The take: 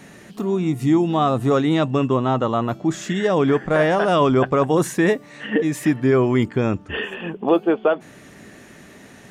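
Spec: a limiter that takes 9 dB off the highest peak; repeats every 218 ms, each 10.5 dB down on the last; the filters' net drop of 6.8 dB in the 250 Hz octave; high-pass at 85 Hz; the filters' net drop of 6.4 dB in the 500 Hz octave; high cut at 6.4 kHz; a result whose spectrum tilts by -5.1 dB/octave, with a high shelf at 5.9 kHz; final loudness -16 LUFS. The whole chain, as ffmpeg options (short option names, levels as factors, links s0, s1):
-af "highpass=85,lowpass=6400,equalizer=f=250:t=o:g=-7,equalizer=f=500:t=o:g=-6,highshelf=f=5900:g=-3,alimiter=limit=0.126:level=0:latency=1,aecho=1:1:218|436|654:0.299|0.0896|0.0269,volume=3.76"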